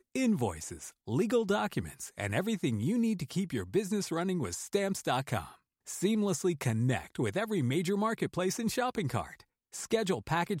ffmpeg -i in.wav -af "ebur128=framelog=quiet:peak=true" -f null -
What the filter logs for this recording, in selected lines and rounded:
Integrated loudness:
  I:         -32.3 LUFS
  Threshold: -42.5 LUFS
Loudness range:
  LRA:         1.3 LU
  Threshold: -52.4 LUFS
  LRA low:   -33.0 LUFS
  LRA high:  -31.7 LUFS
True peak:
  Peak:      -16.4 dBFS